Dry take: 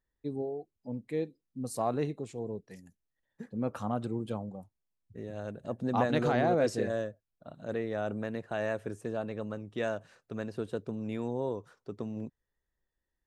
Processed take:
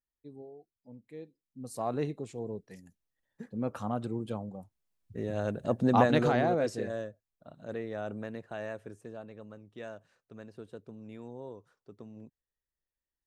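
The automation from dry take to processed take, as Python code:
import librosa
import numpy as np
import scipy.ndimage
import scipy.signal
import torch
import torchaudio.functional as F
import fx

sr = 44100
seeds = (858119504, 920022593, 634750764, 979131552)

y = fx.gain(x, sr, db=fx.line((1.21, -12.5), (1.99, -0.5), (4.5, -0.5), (5.32, 7.0), (5.83, 7.0), (6.72, -3.5), (8.24, -3.5), (9.35, -10.5)))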